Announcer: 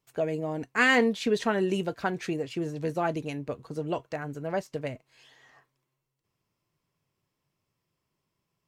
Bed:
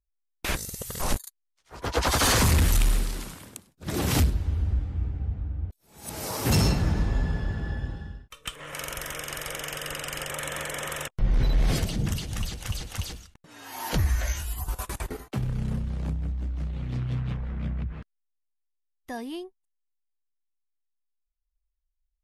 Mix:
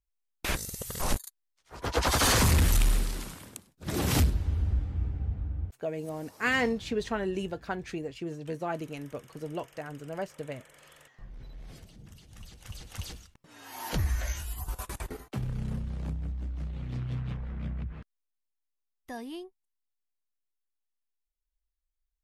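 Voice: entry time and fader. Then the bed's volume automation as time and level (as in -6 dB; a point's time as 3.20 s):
5.65 s, -5.0 dB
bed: 5.62 s -2 dB
6.30 s -23.5 dB
12.09 s -23.5 dB
13.10 s -4.5 dB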